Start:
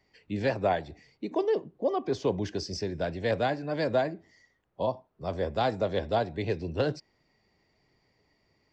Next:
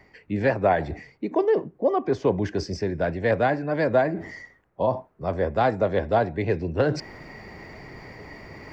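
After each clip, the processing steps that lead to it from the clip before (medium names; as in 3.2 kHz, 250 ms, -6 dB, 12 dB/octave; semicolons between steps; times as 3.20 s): resonant high shelf 2.6 kHz -7.5 dB, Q 1.5; reverse; upward compressor, threshold -28 dBFS; reverse; trim +5.5 dB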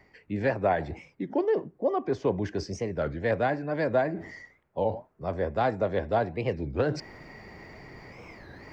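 warped record 33 1/3 rpm, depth 250 cents; trim -4.5 dB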